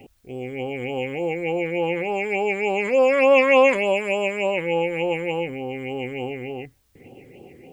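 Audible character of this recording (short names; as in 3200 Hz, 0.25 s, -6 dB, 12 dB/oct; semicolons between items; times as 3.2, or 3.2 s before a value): phasing stages 8, 3.4 Hz, lowest notch 780–2000 Hz; a quantiser's noise floor 12-bit, dither triangular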